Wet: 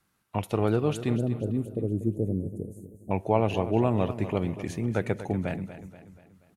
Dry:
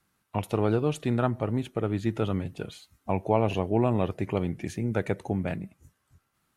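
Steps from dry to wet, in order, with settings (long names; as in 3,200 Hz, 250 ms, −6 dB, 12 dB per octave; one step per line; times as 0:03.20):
0:01.16–0:03.11: inverse Chebyshev band-stop filter 1,400–3,400 Hz, stop band 70 dB
repeating echo 240 ms, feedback 48%, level −12.5 dB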